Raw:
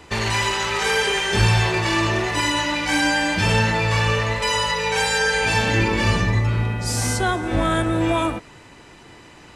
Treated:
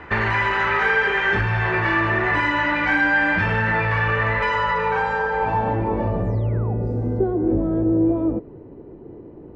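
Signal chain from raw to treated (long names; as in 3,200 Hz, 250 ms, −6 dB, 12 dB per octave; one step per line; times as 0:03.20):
downward compressor, threshold −21 dBFS, peak gain reduction 9 dB
sine wavefolder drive 4 dB, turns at −12.5 dBFS
sound drawn into the spectrogram fall, 0:06.20–0:06.74, 680–10,000 Hz −26 dBFS
low-pass filter sweep 1,700 Hz → 410 Hz, 0:04.41–0:07.02
level −4 dB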